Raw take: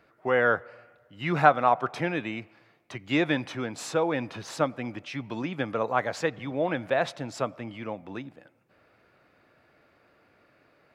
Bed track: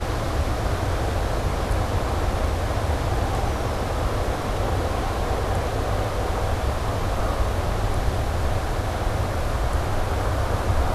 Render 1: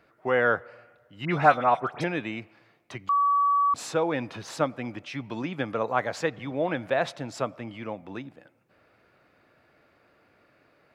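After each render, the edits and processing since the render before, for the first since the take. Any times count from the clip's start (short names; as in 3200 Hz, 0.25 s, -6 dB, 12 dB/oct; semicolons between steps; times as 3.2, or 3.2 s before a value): 1.25–2.04 dispersion highs, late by 74 ms, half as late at 2500 Hz; 3.09–3.74 bleep 1140 Hz -19 dBFS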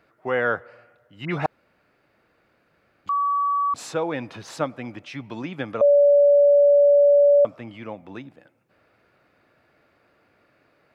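1.46–3.06 room tone; 5.81–7.45 bleep 574 Hz -11.5 dBFS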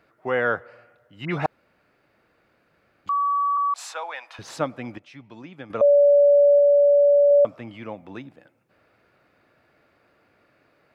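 3.57–4.39 HPF 740 Hz 24 dB/oct; 4.98–5.7 gain -9.5 dB; 6.58–7.31 dynamic EQ 400 Hz, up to -4 dB, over -28 dBFS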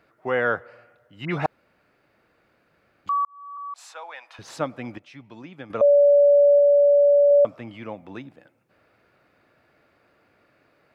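3.25–4.86 fade in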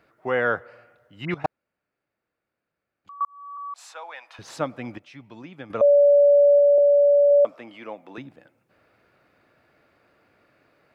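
1.34–3.21 level quantiser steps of 21 dB; 6.78–8.18 HPF 320 Hz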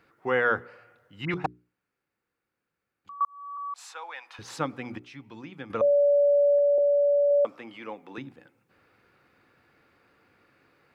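bell 630 Hz -14 dB 0.21 oct; notches 60/120/180/240/300/360/420 Hz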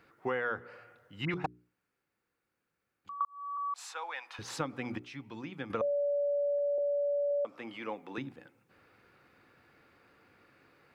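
compressor 6:1, threshold -30 dBFS, peak gain reduction 10.5 dB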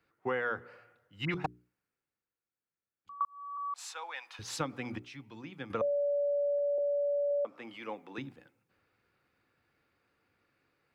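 three-band expander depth 40%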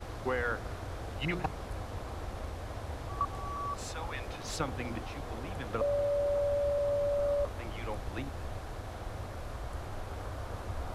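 add bed track -16.5 dB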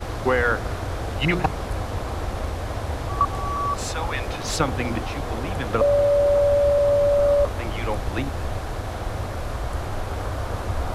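gain +12 dB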